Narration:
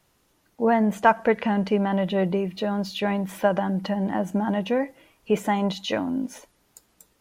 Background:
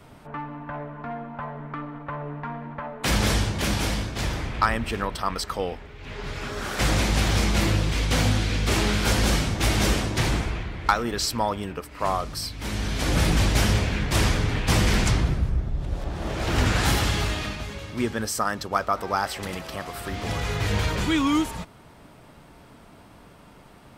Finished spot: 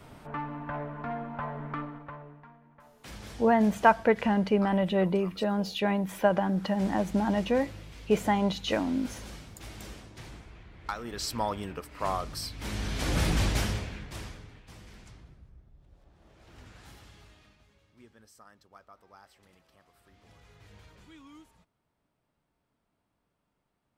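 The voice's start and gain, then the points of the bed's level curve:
2.80 s, −2.5 dB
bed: 0:01.79 −1.5 dB
0:02.58 −22.5 dB
0:10.45 −22.5 dB
0:11.40 −5.5 dB
0:13.49 −5.5 dB
0:14.72 −30 dB

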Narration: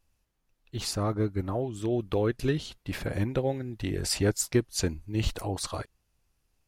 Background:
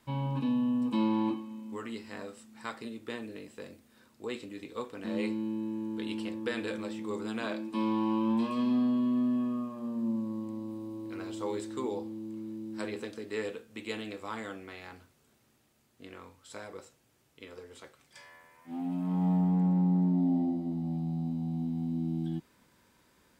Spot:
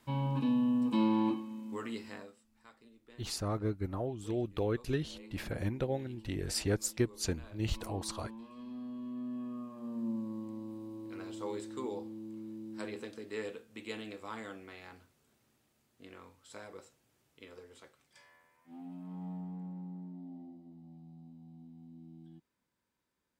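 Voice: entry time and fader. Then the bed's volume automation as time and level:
2.45 s, −6.0 dB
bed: 0:02.08 −0.5 dB
0:02.49 −19.5 dB
0:08.48 −19.5 dB
0:09.96 −4.5 dB
0:17.51 −4.5 dB
0:20.19 −20 dB

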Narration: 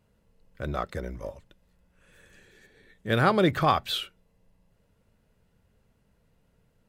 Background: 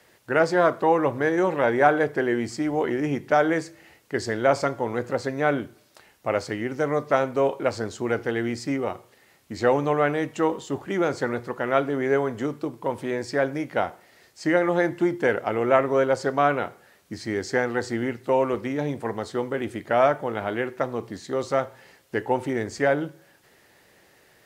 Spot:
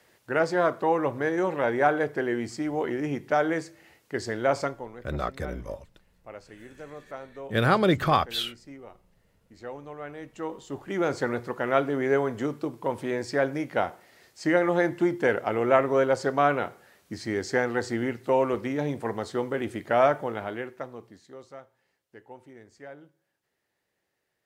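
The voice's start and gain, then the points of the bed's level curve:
4.45 s, +0.5 dB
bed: 0:04.64 −4 dB
0:05.01 −18.5 dB
0:09.94 −18.5 dB
0:11.11 −1.5 dB
0:20.19 −1.5 dB
0:21.66 −22.5 dB

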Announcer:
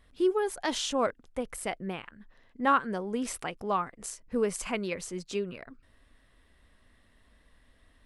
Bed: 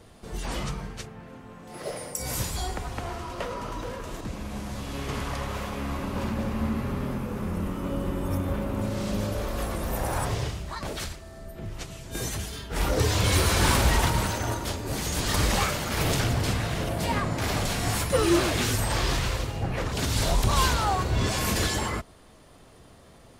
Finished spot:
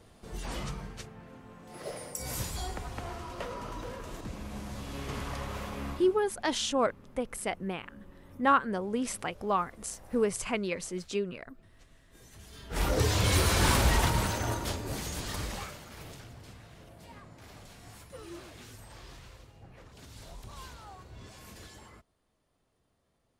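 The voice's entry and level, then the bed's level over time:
5.80 s, +0.5 dB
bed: 0:05.89 −5.5 dB
0:06.26 −25 dB
0:12.26 −25 dB
0:12.78 −3 dB
0:14.75 −3 dB
0:16.25 −23.5 dB

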